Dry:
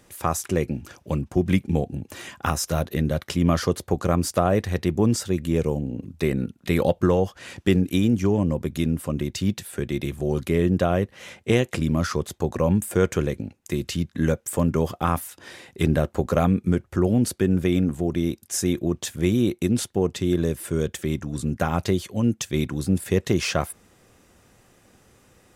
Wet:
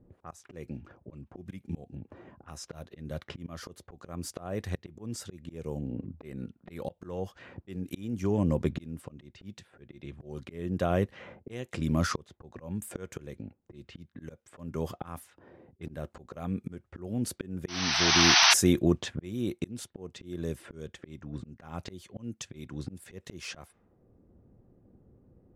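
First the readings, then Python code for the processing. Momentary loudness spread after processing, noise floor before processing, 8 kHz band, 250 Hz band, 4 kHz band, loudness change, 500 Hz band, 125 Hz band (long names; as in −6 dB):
19 LU, −59 dBFS, −1.5 dB, −11.5 dB, +4.5 dB, −5.5 dB, −12.5 dB, −12.0 dB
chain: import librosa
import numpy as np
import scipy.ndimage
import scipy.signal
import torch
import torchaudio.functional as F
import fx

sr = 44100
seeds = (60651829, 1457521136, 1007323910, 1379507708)

y = fx.spec_paint(x, sr, seeds[0], shape='noise', start_s=17.68, length_s=0.86, low_hz=640.0, high_hz=6200.0, level_db=-19.0)
y = fx.env_lowpass(y, sr, base_hz=340.0, full_db=-19.0)
y = fx.auto_swell(y, sr, attack_ms=791.0)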